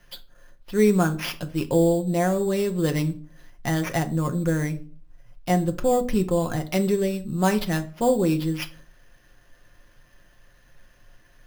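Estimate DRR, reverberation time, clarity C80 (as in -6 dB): 3.5 dB, 0.45 s, 22.5 dB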